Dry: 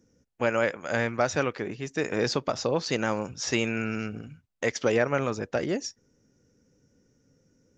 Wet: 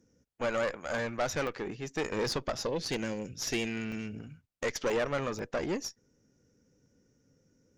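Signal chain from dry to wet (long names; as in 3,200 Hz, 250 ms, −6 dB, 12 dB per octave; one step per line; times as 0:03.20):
0:02.67–0:04.19: Butterworth band-reject 970 Hz, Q 0.8
tube saturation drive 24 dB, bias 0.6
regular buffer underruns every 0.49 s, samples 64, zero, from 0:00.98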